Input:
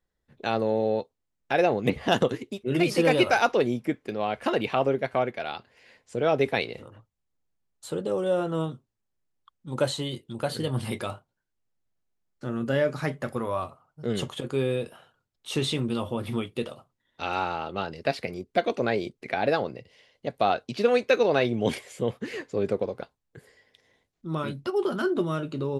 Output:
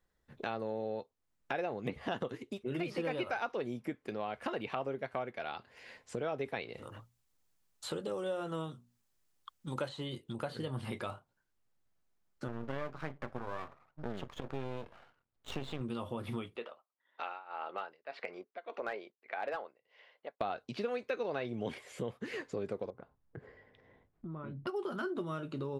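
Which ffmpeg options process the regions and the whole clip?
ffmpeg -i in.wav -filter_complex "[0:a]asettb=1/sr,asplit=3[link_01][link_02][link_03];[link_01]atrim=end=6.824[link_04];[link_02]atrim=start=6.82:end=9.89,asetpts=PTS-STARTPTS,afade=type=in:duration=0.004:curve=qsin,afade=type=out:start_time=3.066:duration=0.004:curve=qsin,highshelf=frequency=2700:gain=10,bandreject=frequency=60:width_type=h:width=6,bandreject=frequency=120:width_type=h:width=6,bandreject=frequency=180:width_type=h:width=6,bandreject=frequency=240:width_type=h:width=6[link_05];[link_03]atrim=start=9.886[link_06];[link_04][link_05]acrossfade=duration=0.004:curve1=hsin:curve2=qsin[link_07];[link_07][link_06]acrossfade=duration=0.004:curve1=qsin:curve2=hsin,asettb=1/sr,asplit=3[link_08][link_09][link_10];[link_08]atrim=end=12.484[link_11];[link_09]atrim=start=12.48:end=15.81,asetpts=PTS-STARTPTS,afade=type=in:duration=0.004:curve=qsin,afade=type=out:start_time=3.326:duration=0.004:curve=qsin,adynamicsmooth=sensitivity=7:basefreq=3700,highshelf=frequency=4900:gain=-6.5,aeval=exprs='max(val(0),0)':channel_layout=same[link_12];[link_10]atrim=start=15.806[link_13];[link_11][link_12]acrossfade=duration=0.004:curve1=hsin:curve2=qsin[link_14];[link_14][link_13]acrossfade=duration=0.004:curve1=qsin:curve2=hsin,asettb=1/sr,asplit=3[link_15][link_16][link_17];[link_15]atrim=end=16.564[link_18];[link_16]atrim=start=16.56:end=20.41,asetpts=PTS-STARTPTS,afade=type=in:duration=0.004:curve=qsin,afade=type=out:start_time=3.846:duration=0.004:curve=qsin,highpass=580,lowpass=2400,tremolo=f=1.7:d=0.95,asoftclip=type=hard:threshold=-21.5dB[link_19];[link_17]atrim=start=20.406[link_20];[link_18][link_19]acrossfade=duration=0.004:curve1=hsin:curve2=qsin[link_21];[link_21][link_20]acrossfade=duration=0.004:curve1=qsin:curve2=hsin,asettb=1/sr,asplit=3[link_22][link_23][link_24];[link_22]atrim=end=22.904[link_25];[link_23]atrim=start=22.9:end=24.67,asetpts=PTS-STARTPTS,afade=type=in:duration=0.004:curve=qsin,afade=type=out:start_time=1.766:duration=0.004:curve=qsin,lowpass=1700,lowshelf=frequency=340:gain=7.5,acompressor=threshold=-43dB:ratio=4:attack=3.2:release=140:knee=1:detection=peak[link_26];[link_24]atrim=start=24.666[link_27];[link_25][link_26]acrossfade=duration=0.004:curve1=hsin:curve2=qsin[link_28];[link_28][link_27]acrossfade=duration=0.004:curve1=qsin:curve2=hsin,acrossover=split=4100[link_29][link_30];[link_30]acompressor=threshold=-50dB:ratio=4:attack=1:release=60[link_31];[link_29][link_31]amix=inputs=2:normalize=0,equalizer=frequency=1200:width=1.1:gain=3.5,acompressor=threshold=-40dB:ratio=3,volume=1dB" out.wav

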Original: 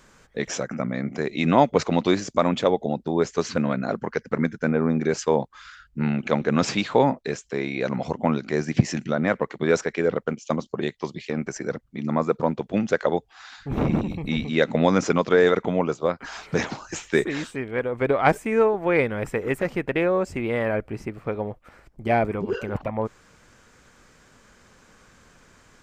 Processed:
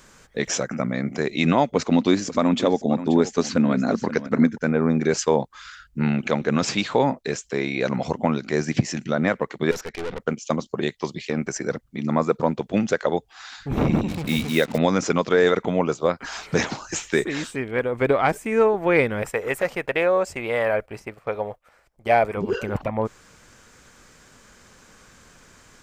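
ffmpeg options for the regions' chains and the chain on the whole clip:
ffmpeg -i in.wav -filter_complex "[0:a]asettb=1/sr,asplit=3[link_01][link_02][link_03];[link_01]atrim=end=1.764[link_04];[link_02]atrim=start=1.76:end=4.58,asetpts=PTS-STARTPTS,afade=type=in:duration=0.004:curve=qsin,afade=type=out:start_time=2.816:duration=0.004:curve=qsin,equalizer=frequency=250:width_type=o:width=0.56:gain=9,aecho=1:1:531:0.158,atrim=end_sample=124362[link_05];[link_03]atrim=start=4.576[link_06];[link_04][link_05]acrossfade=duration=0.004:curve1=hsin:curve2=qsin[link_07];[link_07][link_06]acrossfade=duration=0.004:curve1=qsin:curve2=hsin,asettb=1/sr,asplit=3[link_08][link_09][link_10];[link_08]atrim=end=9.714[link_11];[link_09]atrim=start=9.71:end=10.2,asetpts=PTS-STARTPTS,afade=type=in:duration=0.004:curve=qsin,afade=type=out:start_time=0.486:duration=0.004:curve=qsin,lowpass=6100,aeval=exprs='(tanh(28.2*val(0)+0.75)-tanh(0.75))/28.2':channel_layout=same[link_12];[link_10]atrim=start=10.196[link_13];[link_11][link_12]acrossfade=duration=0.004:curve1=hsin:curve2=qsin[link_14];[link_14][link_13]acrossfade=duration=0.004:curve1=qsin:curve2=hsin,asettb=1/sr,asplit=3[link_15][link_16][link_17];[link_15]atrim=end=14.084[link_18];[link_16]atrim=start=14.08:end=14.78,asetpts=PTS-STARTPTS,afade=type=in:duration=0.004:curve=qsin,afade=type=out:start_time=0.696:duration=0.004:curve=qsin,highpass=51,acrusher=bits=5:mix=0:aa=0.5[link_19];[link_17]atrim=start=14.776[link_20];[link_18][link_19]acrossfade=duration=0.004:curve1=hsin:curve2=qsin[link_21];[link_21][link_20]acrossfade=duration=0.004:curve1=qsin:curve2=hsin,asettb=1/sr,asplit=3[link_22][link_23][link_24];[link_22]atrim=end=19.224[link_25];[link_23]atrim=start=19.22:end=22.37,asetpts=PTS-STARTPTS,afade=type=in:duration=0.004:curve=qsin,afade=type=out:start_time=3.146:duration=0.004:curve=qsin,lowshelf=frequency=410:width_type=q:width=1.5:gain=-7.5,agate=range=-9dB:threshold=-45dB:ratio=16:release=100:detection=peak[link_26];[link_24]atrim=start=22.366[link_27];[link_25][link_26]acrossfade=duration=0.004:curve1=hsin:curve2=qsin[link_28];[link_28][link_27]acrossfade=duration=0.004:curve1=qsin:curve2=hsin,highshelf=frequency=4100:gain=6,alimiter=limit=-8.5dB:level=0:latency=1:release=446,volume=2dB" out.wav

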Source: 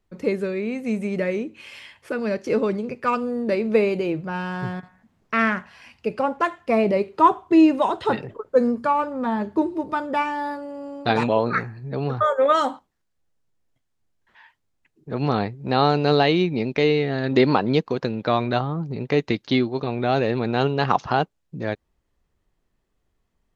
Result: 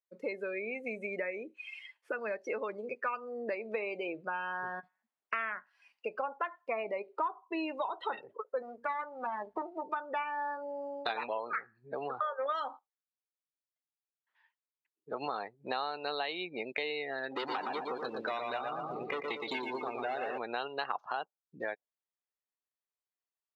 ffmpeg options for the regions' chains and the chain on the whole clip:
ffmpeg -i in.wav -filter_complex "[0:a]asettb=1/sr,asplit=3[link_01][link_02][link_03];[link_01]atrim=end=8.624[link_04];[link_02]atrim=start=8.62:end=9.82,asetpts=PTS-STARTPTS,afade=type=in:duration=0.004:curve=qsin,afade=type=out:start_time=1.196:duration=0.004:curve=qsin,aeval=exprs='if(lt(val(0),0),0.251*val(0),val(0))':channel_layout=same,aeval=exprs='val(0)+0.00398*(sin(2*PI*60*n/s)+sin(2*PI*2*60*n/s)/2+sin(2*PI*3*60*n/s)/3+sin(2*PI*4*60*n/s)/4+sin(2*PI*5*60*n/s)/5)':channel_layout=same[link_05];[link_03]atrim=start=9.816[link_06];[link_04][link_05]acrossfade=duration=0.004:curve1=hsin:curve2=qsin[link_07];[link_07][link_06]acrossfade=duration=0.004:curve1=qsin:curve2=hsin,asettb=1/sr,asplit=3[link_08][link_09][link_10];[link_08]atrim=end=17.314[link_11];[link_09]atrim=start=17.31:end=20.38,asetpts=PTS-STARTPTS,afade=type=in:duration=0.004:curve=qsin,afade=type=out:start_time=3.066:duration=0.004:curve=qsin,asoftclip=type=hard:threshold=-20dB,aecho=1:1:117|234|351|468|585|702|819|936:0.631|0.353|0.198|0.111|0.0621|0.0347|0.0195|0.0109,atrim=end_sample=135387[link_12];[link_10]atrim=start=20.376[link_13];[link_11][link_12]acrossfade=duration=0.004:curve1=hsin:curve2=qsin[link_14];[link_14][link_13]acrossfade=duration=0.004:curve1=qsin:curve2=hsin,afftdn=noise_reduction=25:noise_floor=-33,highpass=760,acompressor=threshold=-38dB:ratio=5,volume=4dB" out.wav

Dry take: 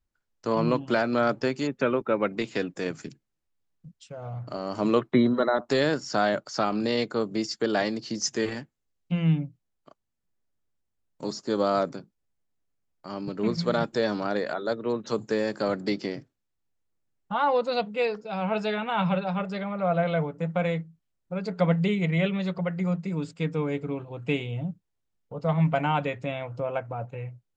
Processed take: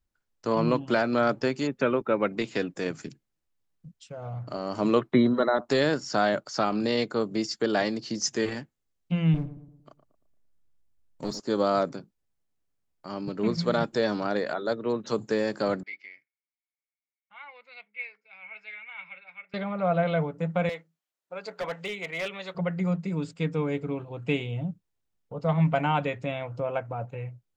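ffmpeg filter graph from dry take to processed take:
ffmpeg -i in.wav -filter_complex "[0:a]asettb=1/sr,asplit=3[link_01][link_02][link_03];[link_01]atrim=end=9.344[link_04];[link_02]atrim=start=9.34:end=11.4,asetpts=PTS-STARTPTS,afade=type=in:duration=0.004:curve=qsin,afade=type=out:start_time=2.056:duration=0.004:curve=qsin,lowshelf=frequency=86:gain=10,aeval=exprs='clip(val(0),-1,0.0299)':channel_layout=same,asplit=2[link_05][link_06];[link_06]adelay=114,lowpass=frequency=1100:poles=1,volume=-11dB,asplit=2[link_07][link_08];[link_08]adelay=114,lowpass=frequency=1100:poles=1,volume=0.46,asplit=2[link_09][link_10];[link_10]adelay=114,lowpass=frequency=1100:poles=1,volume=0.46,asplit=2[link_11][link_12];[link_12]adelay=114,lowpass=frequency=1100:poles=1,volume=0.46,asplit=2[link_13][link_14];[link_14]adelay=114,lowpass=frequency=1100:poles=1,volume=0.46[link_15];[link_05][link_07][link_09][link_11][link_13][link_15]amix=inputs=6:normalize=0,atrim=end_sample=90846[link_16];[link_03]atrim=start=11.396[link_17];[link_04][link_16]acrossfade=duration=0.004:curve1=hsin:curve2=qsin[link_18];[link_18][link_17]acrossfade=duration=0.004:curve1=qsin:curve2=hsin,asettb=1/sr,asplit=3[link_19][link_20][link_21];[link_19]atrim=end=15.834[link_22];[link_20]atrim=start=15.83:end=19.54,asetpts=PTS-STARTPTS,afade=type=in:duration=0.004:curve=qsin,afade=type=out:start_time=3.706:duration=0.004:curve=qsin,bandpass=frequency=2200:width_type=q:width=20,acontrast=74[link_23];[link_21]atrim=start=19.536[link_24];[link_22][link_23]acrossfade=duration=0.004:curve1=hsin:curve2=qsin[link_25];[link_25][link_24]acrossfade=duration=0.004:curve1=qsin:curve2=hsin,asettb=1/sr,asplit=3[link_26][link_27][link_28];[link_26]atrim=end=20.694[link_29];[link_27]atrim=start=20.69:end=22.55,asetpts=PTS-STARTPTS,afade=type=in:duration=0.004:curve=qsin,afade=type=out:start_time=1.856:duration=0.004:curve=qsin,highpass=570,volume=27dB,asoftclip=hard,volume=-27dB[link_30];[link_28]atrim=start=22.546[link_31];[link_29][link_30]acrossfade=duration=0.004:curve1=hsin:curve2=qsin[link_32];[link_32][link_31]acrossfade=duration=0.004:curve1=qsin:curve2=hsin" out.wav

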